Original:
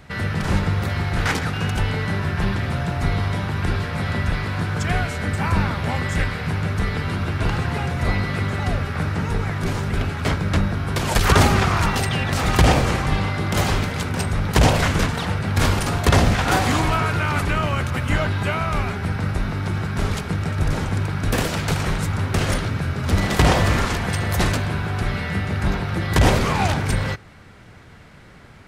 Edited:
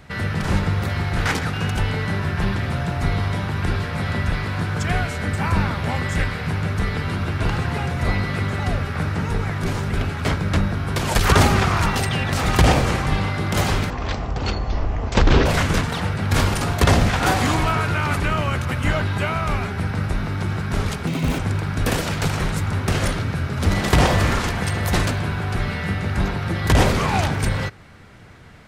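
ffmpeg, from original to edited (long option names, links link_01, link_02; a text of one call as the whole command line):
ffmpeg -i in.wav -filter_complex "[0:a]asplit=5[link_01][link_02][link_03][link_04][link_05];[link_01]atrim=end=13.904[link_06];[link_02]atrim=start=13.9:end=14.71,asetpts=PTS-STARTPTS,asetrate=22932,aresample=44100,atrim=end_sample=68694,asetpts=PTS-STARTPTS[link_07];[link_03]atrim=start=14.706:end=20.324[link_08];[link_04]atrim=start=20.32:end=20.85,asetpts=PTS-STARTPTS,asetrate=73206,aresample=44100,atrim=end_sample=14080,asetpts=PTS-STARTPTS[link_09];[link_05]atrim=start=20.846[link_10];[link_06][link_07]acrossfade=duration=0.004:curve1=hsin:curve2=hsin[link_11];[link_11][link_08]acrossfade=duration=0.004:curve1=hsin:curve2=hsin[link_12];[link_12][link_09]acrossfade=duration=0.004:curve1=hsin:curve2=hsin[link_13];[link_13][link_10]acrossfade=duration=0.004:curve1=hsin:curve2=hsin" out.wav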